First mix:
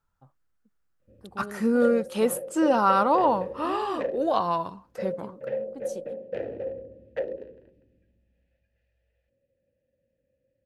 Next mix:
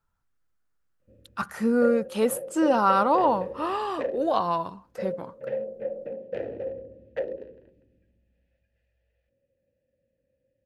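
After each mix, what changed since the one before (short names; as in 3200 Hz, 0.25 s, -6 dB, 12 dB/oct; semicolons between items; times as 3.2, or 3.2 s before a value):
first voice: muted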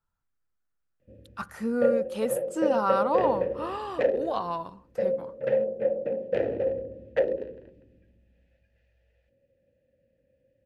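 speech -5.5 dB; background +6.0 dB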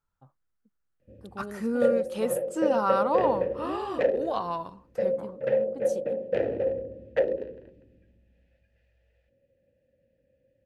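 first voice: unmuted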